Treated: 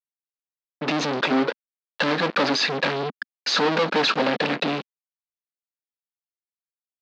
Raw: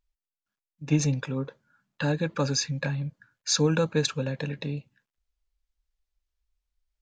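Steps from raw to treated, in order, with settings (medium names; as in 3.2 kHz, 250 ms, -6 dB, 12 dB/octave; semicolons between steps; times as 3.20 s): fuzz box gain 47 dB, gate -51 dBFS; elliptic band-pass 240–4400 Hz, stop band 60 dB; trim -3.5 dB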